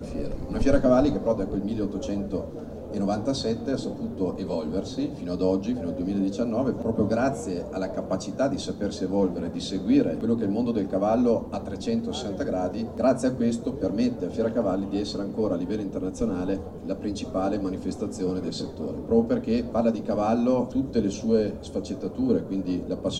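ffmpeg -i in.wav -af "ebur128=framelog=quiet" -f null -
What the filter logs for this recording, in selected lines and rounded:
Integrated loudness:
  I:         -26.7 LUFS
  Threshold: -36.7 LUFS
Loudness range:
  LRA:         3.8 LU
  Threshold: -46.9 LUFS
  LRA low:   -29.1 LUFS
  LRA high:  -25.3 LUFS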